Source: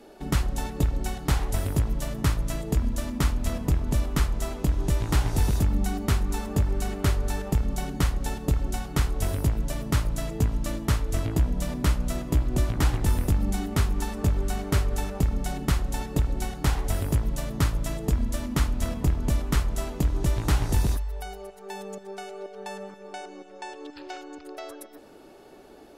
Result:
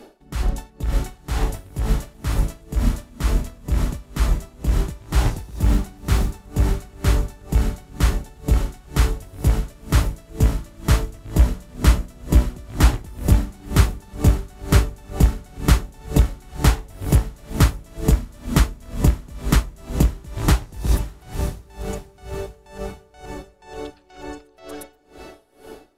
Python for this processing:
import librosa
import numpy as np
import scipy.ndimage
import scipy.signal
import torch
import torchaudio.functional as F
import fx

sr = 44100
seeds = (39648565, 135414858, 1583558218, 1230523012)

y = fx.echo_diffused(x, sr, ms=707, feedback_pct=53, wet_db=-8)
y = fx.quant_companded(y, sr, bits=8, at=(5.43, 6.43))
y = y * 10.0 ** (-25 * (0.5 - 0.5 * np.cos(2.0 * np.pi * 2.1 * np.arange(len(y)) / sr)) / 20.0)
y = y * librosa.db_to_amplitude(8.0)